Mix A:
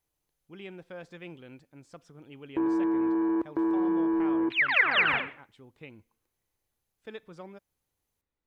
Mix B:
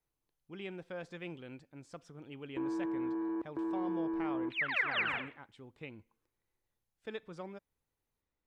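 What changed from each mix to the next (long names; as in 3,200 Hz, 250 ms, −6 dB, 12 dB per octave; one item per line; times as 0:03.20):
background −9.5 dB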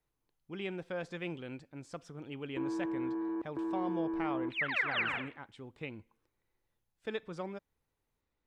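speech +4.5 dB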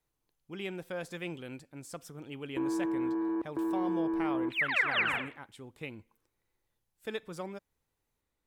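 speech: remove high-frequency loss of the air 110 metres
background +4.0 dB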